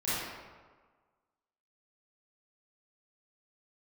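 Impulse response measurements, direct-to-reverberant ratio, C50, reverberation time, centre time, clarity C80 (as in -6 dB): -13.0 dB, -5.0 dB, 1.5 s, 117 ms, -0.5 dB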